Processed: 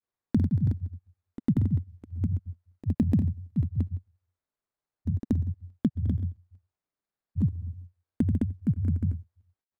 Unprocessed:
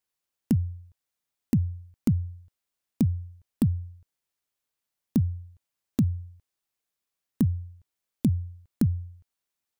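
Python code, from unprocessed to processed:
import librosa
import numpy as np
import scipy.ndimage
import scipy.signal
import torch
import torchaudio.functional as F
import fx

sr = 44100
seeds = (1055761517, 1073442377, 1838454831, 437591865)

y = scipy.signal.medfilt(x, 15)
y = fx.room_flutter(y, sr, wall_m=11.5, rt60_s=0.47)
y = fx.granulator(y, sr, seeds[0], grain_ms=100.0, per_s=20.0, spray_ms=188.0, spread_st=0)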